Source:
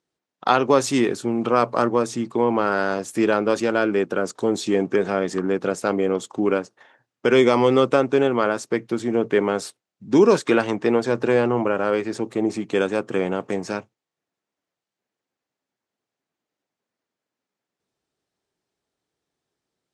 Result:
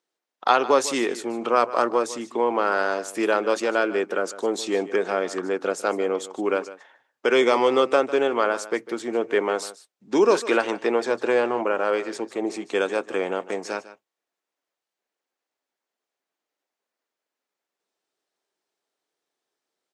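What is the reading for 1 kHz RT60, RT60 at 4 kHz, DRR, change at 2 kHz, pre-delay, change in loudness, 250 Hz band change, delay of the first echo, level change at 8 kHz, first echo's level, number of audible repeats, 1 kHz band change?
no reverb audible, no reverb audible, no reverb audible, 0.0 dB, no reverb audible, −2.5 dB, −6.5 dB, 151 ms, 0.0 dB, −16.0 dB, 1, 0.0 dB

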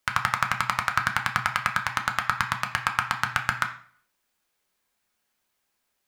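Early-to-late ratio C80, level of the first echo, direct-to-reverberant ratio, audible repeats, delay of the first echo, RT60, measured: 14.0 dB, no echo audible, 2.5 dB, no echo audible, no echo audible, 0.50 s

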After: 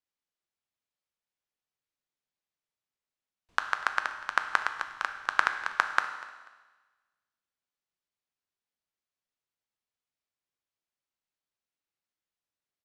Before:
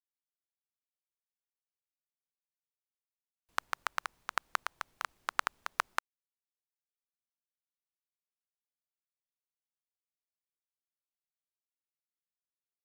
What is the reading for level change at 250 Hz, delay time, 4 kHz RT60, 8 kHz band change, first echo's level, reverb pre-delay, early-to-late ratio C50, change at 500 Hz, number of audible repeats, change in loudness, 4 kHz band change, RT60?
+5.0 dB, 244 ms, 1.3 s, −0.5 dB, −20.0 dB, 6 ms, 9.0 dB, +5.0 dB, 2, +7.5 dB, +4.0 dB, 1.2 s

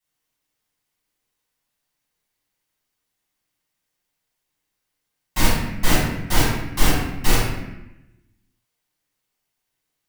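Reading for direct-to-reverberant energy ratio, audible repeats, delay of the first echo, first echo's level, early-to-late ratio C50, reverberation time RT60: −12.5 dB, no echo audible, no echo audible, no echo audible, 0.5 dB, 0.90 s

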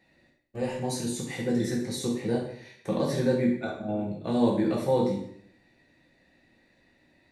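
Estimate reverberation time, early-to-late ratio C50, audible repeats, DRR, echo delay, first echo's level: 0.65 s, 4.5 dB, no echo audible, −3.0 dB, no echo audible, no echo audible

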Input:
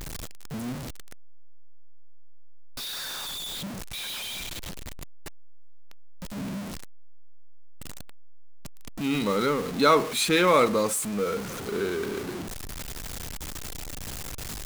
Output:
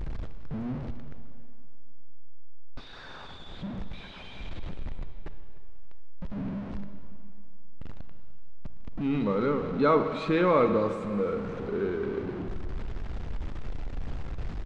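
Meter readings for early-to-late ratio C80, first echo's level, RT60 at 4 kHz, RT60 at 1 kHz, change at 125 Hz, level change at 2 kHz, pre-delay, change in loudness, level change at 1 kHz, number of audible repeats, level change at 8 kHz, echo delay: 9.5 dB, −19.5 dB, 2.5 s, 2.7 s, +2.0 dB, −7.5 dB, 31 ms, −2.5 dB, −4.0 dB, 1, below −25 dB, 299 ms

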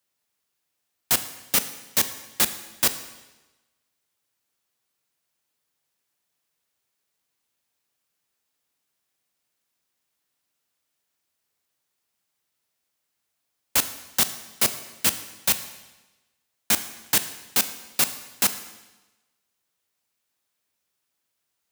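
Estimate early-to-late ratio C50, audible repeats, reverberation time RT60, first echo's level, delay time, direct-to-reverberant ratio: 12.5 dB, no echo audible, 1.1 s, no echo audible, no echo audible, 10.0 dB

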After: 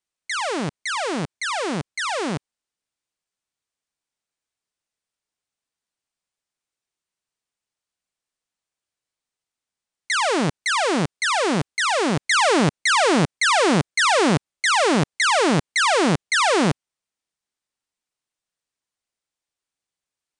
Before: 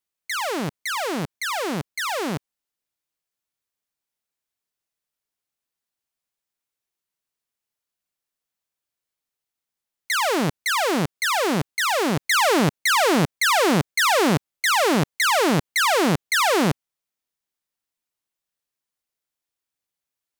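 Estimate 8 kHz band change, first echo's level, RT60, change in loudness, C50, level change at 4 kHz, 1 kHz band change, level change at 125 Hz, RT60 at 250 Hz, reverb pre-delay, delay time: +0.5 dB, no echo audible, no reverb audible, +1.0 dB, no reverb audible, +1.0 dB, +1.0 dB, +1.0 dB, no reverb audible, no reverb audible, no echo audible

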